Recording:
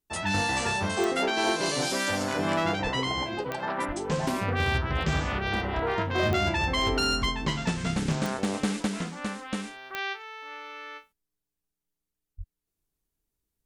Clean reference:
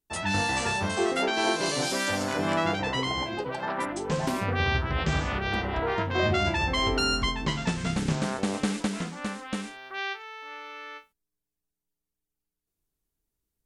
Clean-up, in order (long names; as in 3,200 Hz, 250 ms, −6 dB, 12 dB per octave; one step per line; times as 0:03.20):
clipped peaks rebuilt −18 dBFS
click removal
0:02.83–0:02.95: high-pass filter 140 Hz 24 dB per octave
0:03.87–0:03.99: high-pass filter 140 Hz 24 dB per octave
0:12.37–0:12.49: high-pass filter 140 Hz 24 dB per octave